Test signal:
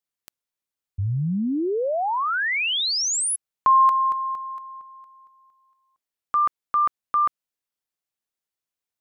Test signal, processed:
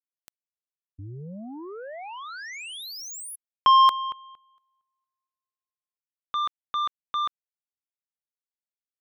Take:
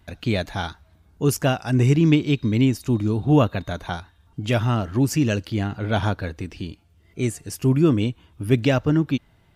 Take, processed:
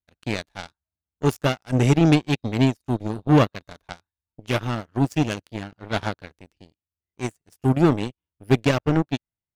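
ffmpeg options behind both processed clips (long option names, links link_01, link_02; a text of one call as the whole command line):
ffmpeg -i in.wav -af "aeval=exprs='0.531*(cos(1*acos(clip(val(0)/0.531,-1,1)))-cos(1*PI/2))+0.075*(cos(7*acos(clip(val(0)/0.531,-1,1)))-cos(7*PI/2))':channel_layout=same" out.wav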